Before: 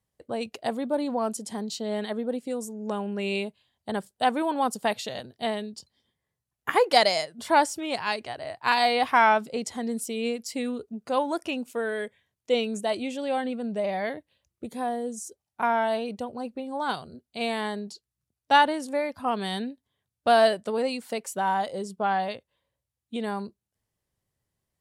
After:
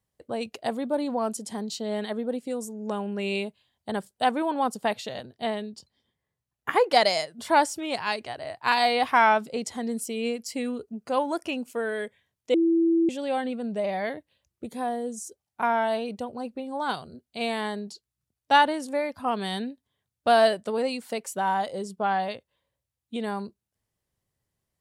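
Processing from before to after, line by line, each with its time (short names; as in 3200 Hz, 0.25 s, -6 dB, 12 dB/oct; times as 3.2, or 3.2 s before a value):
4.31–7.05 high shelf 4200 Hz -5.5 dB
9.97–11.94 notch 3700 Hz
12.54–13.09 bleep 332 Hz -18 dBFS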